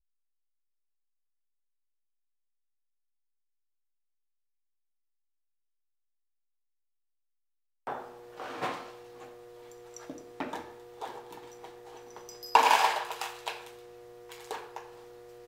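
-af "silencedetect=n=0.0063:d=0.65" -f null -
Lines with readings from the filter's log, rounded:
silence_start: 0.00
silence_end: 7.87 | silence_duration: 7.87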